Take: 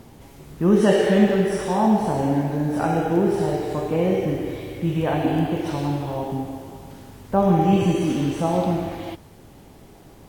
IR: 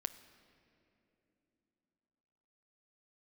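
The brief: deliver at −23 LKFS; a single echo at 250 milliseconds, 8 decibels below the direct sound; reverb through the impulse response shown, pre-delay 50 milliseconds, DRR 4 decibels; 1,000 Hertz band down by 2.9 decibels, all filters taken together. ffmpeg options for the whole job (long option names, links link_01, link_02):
-filter_complex "[0:a]equalizer=frequency=1000:width_type=o:gain=-4,aecho=1:1:250:0.398,asplit=2[link_01][link_02];[1:a]atrim=start_sample=2205,adelay=50[link_03];[link_02][link_03]afir=irnorm=-1:irlink=0,volume=-2.5dB[link_04];[link_01][link_04]amix=inputs=2:normalize=0,volume=-3dB"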